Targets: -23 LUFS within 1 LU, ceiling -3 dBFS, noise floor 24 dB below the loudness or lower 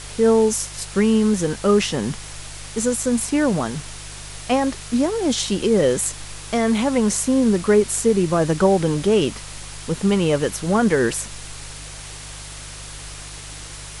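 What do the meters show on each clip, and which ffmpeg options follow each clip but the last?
hum 50 Hz; harmonics up to 150 Hz; hum level -37 dBFS; noise floor -36 dBFS; noise floor target -44 dBFS; loudness -19.5 LUFS; peak -4.5 dBFS; loudness target -23.0 LUFS
-> -af "bandreject=f=50:t=h:w=4,bandreject=f=100:t=h:w=4,bandreject=f=150:t=h:w=4"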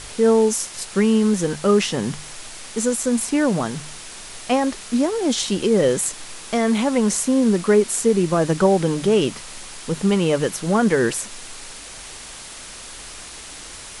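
hum none; noise floor -38 dBFS; noise floor target -44 dBFS
-> -af "afftdn=nr=6:nf=-38"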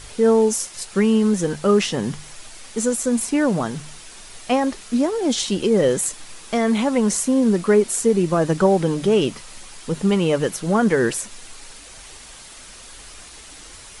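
noise floor -42 dBFS; noise floor target -44 dBFS
-> -af "afftdn=nr=6:nf=-42"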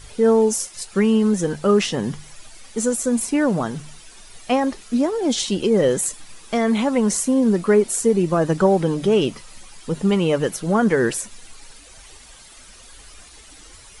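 noise floor -45 dBFS; loudness -20.0 LUFS; peak -4.5 dBFS; loudness target -23.0 LUFS
-> -af "volume=-3dB"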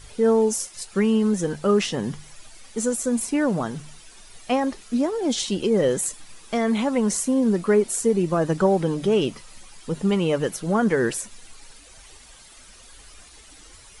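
loudness -23.0 LUFS; peak -7.5 dBFS; noise floor -48 dBFS

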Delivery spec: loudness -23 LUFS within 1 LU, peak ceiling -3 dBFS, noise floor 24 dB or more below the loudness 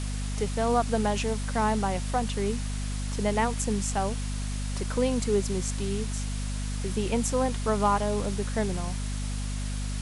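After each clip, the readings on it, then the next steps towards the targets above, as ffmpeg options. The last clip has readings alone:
hum 50 Hz; harmonics up to 250 Hz; hum level -29 dBFS; noise floor -31 dBFS; noise floor target -53 dBFS; loudness -29.0 LUFS; peak -12.5 dBFS; loudness target -23.0 LUFS
-> -af "bandreject=f=50:t=h:w=4,bandreject=f=100:t=h:w=4,bandreject=f=150:t=h:w=4,bandreject=f=200:t=h:w=4,bandreject=f=250:t=h:w=4"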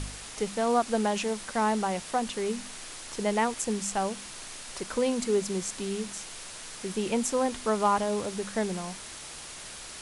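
hum none; noise floor -43 dBFS; noise floor target -54 dBFS
-> -af "afftdn=nr=11:nf=-43"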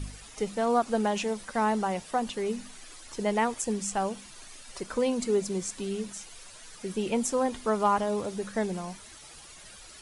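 noise floor -49 dBFS; noise floor target -54 dBFS
-> -af "afftdn=nr=6:nf=-49"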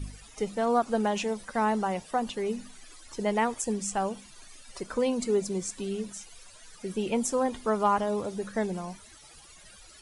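noise floor -52 dBFS; noise floor target -54 dBFS
-> -af "afftdn=nr=6:nf=-52"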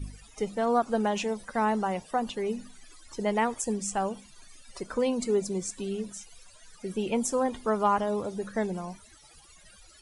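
noise floor -55 dBFS; loudness -29.5 LUFS; peak -12.5 dBFS; loudness target -23.0 LUFS
-> -af "volume=6.5dB"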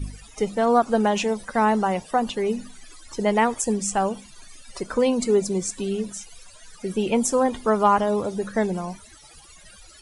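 loudness -23.0 LUFS; peak -6.0 dBFS; noise floor -48 dBFS

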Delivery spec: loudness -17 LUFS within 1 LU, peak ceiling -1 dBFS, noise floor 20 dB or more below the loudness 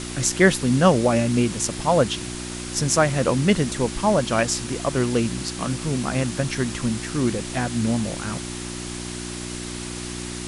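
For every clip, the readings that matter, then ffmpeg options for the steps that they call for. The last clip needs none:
hum 60 Hz; harmonics up to 360 Hz; hum level -31 dBFS; noise floor -32 dBFS; noise floor target -43 dBFS; loudness -23.0 LUFS; peak -3.0 dBFS; loudness target -17.0 LUFS
-> -af "bandreject=f=60:t=h:w=4,bandreject=f=120:t=h:w=4,bandreject=f=180:t=h:w=4,bandreject=f=240:t=h:w=4,bandreject=f=300:t=h:w=4,bandreject=f=360:t=h:w=4"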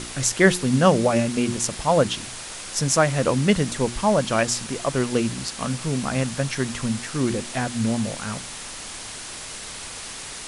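hum none; noise floor -36 dBFS; noise floor target -44 dBFS
-> -af "afftdn=nr=8:nf=-36"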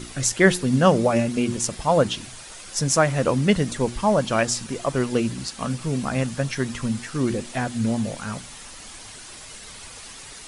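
noise floor -41 dBFS; noise floor target -43 dBFS
-> -af "afftdn=nr=6:nf=-41"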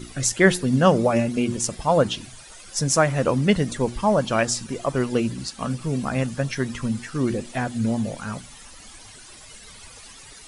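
noise floor -45 dBFS; loudness -23.0 LUFS; peak -2.5 dBFS; loudness target -17.0 LUFS
-> -af "volume=6dB,alimiter=limit=-1dB:level=0:latency=1"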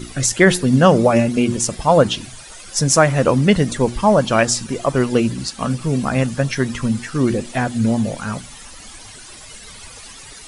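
loudness -17.0 LUFS; peak -1.0 dBFS; noise floor -39 dBFS

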